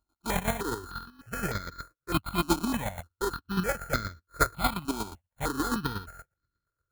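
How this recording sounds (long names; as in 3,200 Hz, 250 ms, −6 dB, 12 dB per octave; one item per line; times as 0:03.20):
a buzz of ramps at a fixed pitch in blocks of 32 samples
chopped level 8.4 Hz, depth 60%, duty 25%
aliases and images of a low sample rate 2,800 Hz, jitter 0%
notches that jump at a steady rate 3.3 Hz 490–2,800 Hz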